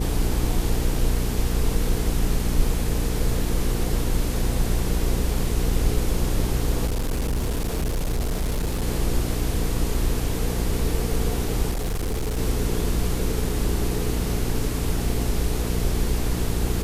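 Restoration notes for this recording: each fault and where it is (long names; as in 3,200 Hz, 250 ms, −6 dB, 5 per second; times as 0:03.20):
mains hum 60 Hz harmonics 7 −27 dBFS
0:06.86–0:08.84: clipping −20.5 dBFS
0:11.70–0:12.38: clipping −22 dBFS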